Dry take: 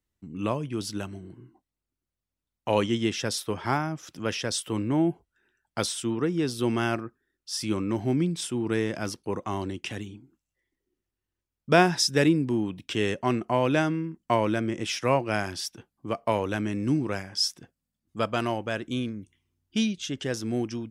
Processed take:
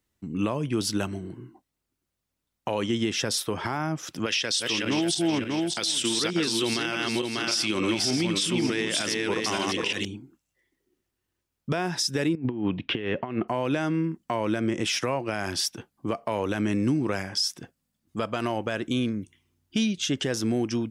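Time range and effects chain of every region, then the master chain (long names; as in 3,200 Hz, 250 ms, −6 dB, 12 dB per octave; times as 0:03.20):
0:04.26–0:10.05: feedback delay that plays each chunk backwards 296 ms, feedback 45%, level −3 dB + meter weighting curve D
0:12.35–0:13.48: compressor whose output falls as the input rises −31 dBFS, ratio −0.5 + low-pass filter 3,200 Hz 24 dB per octave
whole clip: low-shelf EQ 61 Hz −10 dB; downward compressor 5 to 1, threshold −28 dBFS; brickwall limiter −23.5 dBFS; level +7.5 dB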